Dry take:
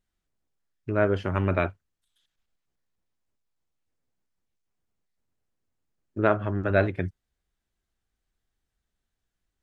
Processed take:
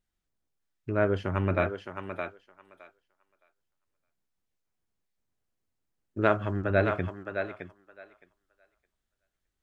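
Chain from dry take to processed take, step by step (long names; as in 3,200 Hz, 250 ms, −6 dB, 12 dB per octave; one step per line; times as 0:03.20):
0:06.21–0:06.62: high-shelf EQ 2,900 Hz +10 dB
feedback echo with a high-pass in the loop 615 ms, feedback 16%, high-pass 430 Hz, level −5 dB
level −2.5 dB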